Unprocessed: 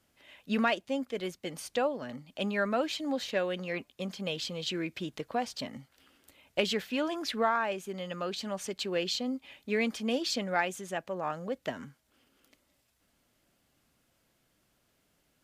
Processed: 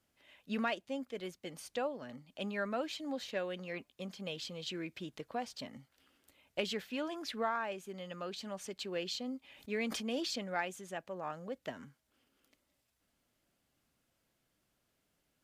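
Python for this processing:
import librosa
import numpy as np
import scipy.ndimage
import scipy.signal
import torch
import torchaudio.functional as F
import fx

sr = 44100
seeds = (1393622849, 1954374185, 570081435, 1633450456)

y = fx.sustainer(x, sr, db_per_s=35.0, at=(9.39, 10.39))
y = F.gain(torch.from_numpy(y), -7.0).numpy()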